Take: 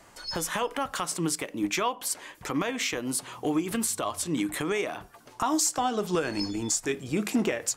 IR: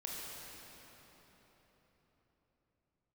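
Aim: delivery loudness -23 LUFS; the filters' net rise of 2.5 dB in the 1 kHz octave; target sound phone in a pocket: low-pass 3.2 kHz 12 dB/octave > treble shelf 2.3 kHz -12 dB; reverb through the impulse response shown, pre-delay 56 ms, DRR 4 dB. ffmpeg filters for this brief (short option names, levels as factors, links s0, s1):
-filter_complex "[0:a]equalizer=f=1000:t=o:g=5.5,asplit=2[s0][s1];[1:a]atrim=start_sample=2205,adelay=56[s2];[s1][s2]afir=irnorm=-1:irlink=0,volume=0.596[s3];[s0][s3]amix=inputs=2:normalize=0,lowpass=3200,highshelf=f=2300:g=-12,volume=2"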